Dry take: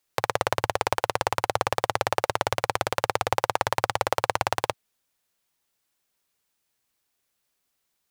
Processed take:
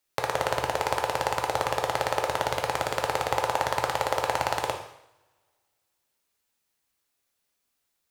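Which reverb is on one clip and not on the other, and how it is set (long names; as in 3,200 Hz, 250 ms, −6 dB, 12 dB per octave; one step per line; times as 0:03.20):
coupled-rooms reverb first 0.72 s, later 2.1 s, from −26 dB, DRR 2.5 dB
level −3 dB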